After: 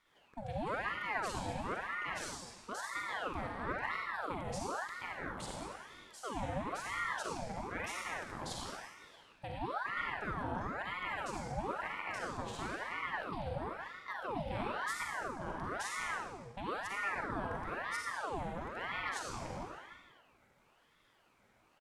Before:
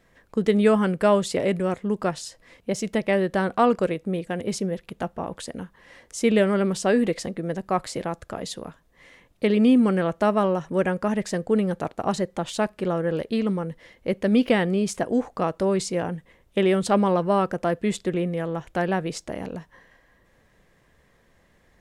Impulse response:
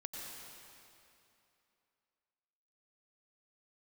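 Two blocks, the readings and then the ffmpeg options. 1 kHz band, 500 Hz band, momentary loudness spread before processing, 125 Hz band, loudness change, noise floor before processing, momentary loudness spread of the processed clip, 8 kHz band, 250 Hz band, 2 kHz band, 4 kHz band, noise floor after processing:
-9.5 dB, -20.5 dB, 13 LU, -16.5 dB, -15.5 dB, -62 dBFS, 8 LU, -11.5 dB, -23.5 dB, -5.0 dB, -11.0 dB, -70 dBFS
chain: -filter_complex "[0:a]asplit=2[a][b];[b]adelay=40,volume=-10.5dB[c];[a][c]amix=inputs=2:normalize=0,areverse,acompressor=threshold=-28dB:ratio=6,areverse,highpass=120[d];[1:a]atrim=start_sample=2205,asetrate=88200,aresample=44100[e];[d][e]afir=irnorm=-1:irlink=0,aeval=exprs='val(0)*sin(2*PI*970*n/s+970*0.7/1*sin(2*PI*1*n/s))':c=same,volume=2.5dB"

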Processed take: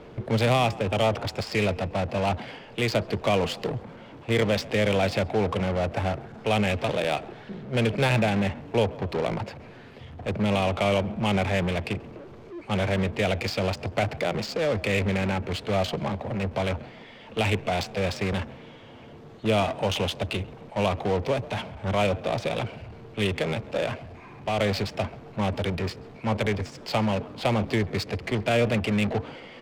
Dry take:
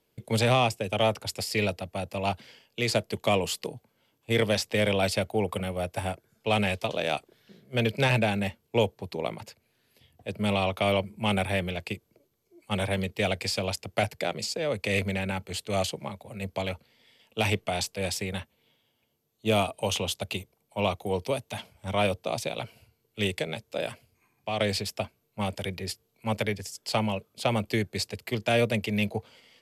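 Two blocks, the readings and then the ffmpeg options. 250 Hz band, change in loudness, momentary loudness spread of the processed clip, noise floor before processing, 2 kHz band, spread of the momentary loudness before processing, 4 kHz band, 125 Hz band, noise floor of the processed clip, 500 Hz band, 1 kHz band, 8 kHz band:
+3.5 dB, +2.5 dB, 12 LU, -73 dBFS, +1.5 dB, 11 LU, -0.5 dB, +4.0 dB, -46 dBFS, +3.0 dB, +2.5 dB, -5.0 dB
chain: -filter_complex "[0:a]aeval=exprs='val(0)+0.5*0.0266*sgn(val(0))':c=same,asplit=2[a][b];[b]alimiter=limit=-21.5dB:level=0:latency=1:release=51,volume=-1dB[c];[a][c]amix=inputs=2:normalize=0,acrusher=bits=4:mix=0:aa=0.5,asplit=5[d][e][f][g][h];[e]adelay=134,afreqshift=42,volume=-18.5dB[i];[f]adelay=268,afreqshift=84,volume=-24.9dB[j];[g]adelay=402,afreqshift=126,volume=-31.3dB[k];[h]adelay=536,afreqshift=168,volume=-37.6dB[l];[d][i][j][k][l]amix=inputs=5:normalize=0,adynamicsmooth=sensitivity=1.5:basefreq=1.6k,volume=-2.5dB"

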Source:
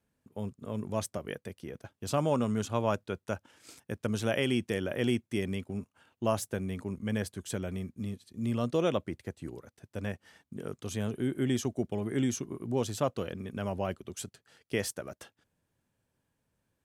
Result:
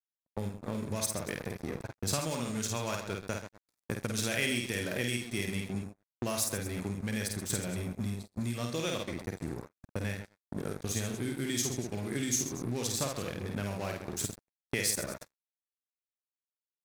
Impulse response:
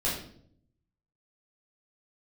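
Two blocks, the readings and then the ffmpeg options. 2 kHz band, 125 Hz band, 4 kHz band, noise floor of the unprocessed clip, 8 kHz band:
+3.0 dB, -1.0 dB, +4.5 dB, -82 dBFS, +9.0 dB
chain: -filter_complex "[0:a]lowshelf=f=150:g=6,asplit=2[a][b];[b]aecho=0:1:50|56|82|131|234:0.708|0.1|0.178|0.282|0.168[c];[a][c]amix=inputs=2:normalize=0,aeval=exprs='sgn(val(0))*max(abs(val(0))-0.00631,0)':c=same,acrossover=split=2200[d][e];[d]acompressor=threshold=-40dB:ratio=12[f];[f][e]amix=inputs=2:normalize=0,equalizer=f=3k:w=5.7:g=-11.5,agate=range=-25dB:threshold=-51dB:ratio=16:detection=peak,volume=8.5dB"

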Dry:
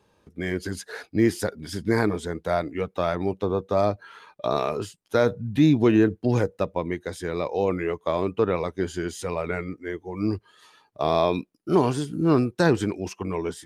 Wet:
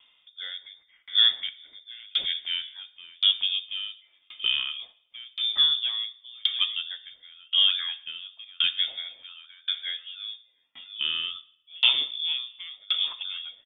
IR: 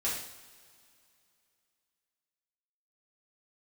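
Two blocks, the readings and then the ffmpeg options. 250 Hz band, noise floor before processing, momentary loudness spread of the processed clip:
under -40 dB, -65 dBFS, 20 LU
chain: -filter_complex "[0:a]acontrast=65,asplit=2[a][b];[b]adelay=699.7,volume=-17dB,highshelf=f=4k:g=-15.7[c];[a][c]amix=inputs=2:normalize=0,asplit=2[d][e];[1:a]atrim=start_sample=2205[f];[e][f]afir=irnorm=-1:irlink=0,volume=-14dB[g];[d][g]amix=inputs=2:normalize=0,lowpass=f=3.1k:t=q:w=0.5098,lowpass=f=3.1k:t=q:w=0.6013,lowpass=f=3.1k:t=q:w=0.9,lowpass=f=3.1k:t=q:w=2.563,afreqshift=-3700,aeval=exprs='val(0)*pow(10,-34*if(lt(mod(0.93*n/s,1),2*abs(0.93)/1000),1-mod(0.93*n/s,1)/(2*abs(0.93)/1000),(mod(0.93*n/s,1)-2*abs(0.93)/1000)/(1-2*abs(0.93)/1000))/20)':c=same,volume=-2dB"

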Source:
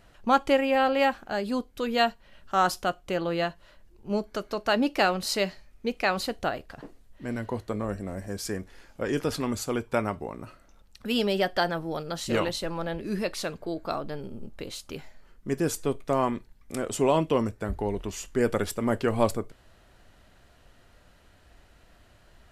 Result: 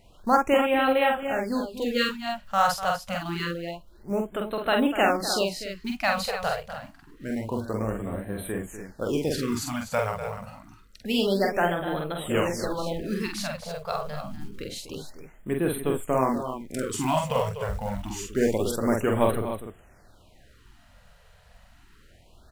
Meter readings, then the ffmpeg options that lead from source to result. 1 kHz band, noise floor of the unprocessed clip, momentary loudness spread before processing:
+1.5 dB, -58 dBFS, 14 LU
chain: -af "aecho=1:1:46|246|293:0.668|0.266|0.316,acrusher=bits=7:mode=log:mix=0:aa=0.000001,afftfilt=real='re*(1-between(b*sr/1024,280*pow(6000/280,0.5+0.5*sin(2*PI*0.27*pts/sr))/1.41,280*pow(6000/280,0.5+0.5*sin(2*PI*0.27*pts/sr))*1.41))':imag='im*(1-between(b*sr/1024,280*pow(6000/280,0.5+0.5*sin(2*PI*0.27*pts/sr))/1.41,280*pow(6000/280,0.5+0.5*sin(2*PI*0.27*pts/sr))*1.41))':win_size=1024:overlap=0.75"

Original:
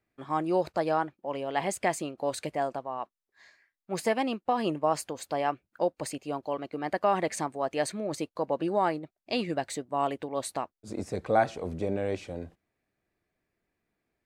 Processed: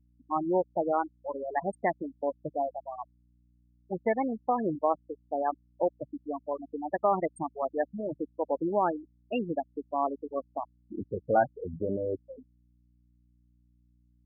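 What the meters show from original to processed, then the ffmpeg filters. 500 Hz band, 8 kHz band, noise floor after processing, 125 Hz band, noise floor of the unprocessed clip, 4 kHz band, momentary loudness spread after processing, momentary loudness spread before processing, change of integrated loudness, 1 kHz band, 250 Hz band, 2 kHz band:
-0.5 dB, under -25 dB, -66 dBFS, -4.0 dB, under -85 dBFS, under -15 dB, 12 LU, 9 LU, -1.0 dB, -0.5 dB, -1.0 dB, -4.5 dB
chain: -af "anlmdn=0.158,afftfilt=real='re*gte(hypot(re,im),0.1)':imag='im*gte(hypot(re,im),0.1)':win_size=1024:overlap=0.75,aeval=exprs='val(0)+0.000631*(sin(2*PI*60*n/s)+sin(2*PI*2*60*n/s)/2+sin(2*PI*3*60*n/s)/3+sin(2*PI*4*60*n/s)/4+sin(2*PI*5*60*n/s)/5)':c=same"

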